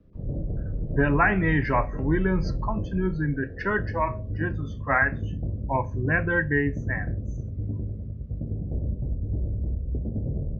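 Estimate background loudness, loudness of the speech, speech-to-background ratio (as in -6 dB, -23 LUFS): -32.5 LUFS, -26.0 LUFS, 6.5 dB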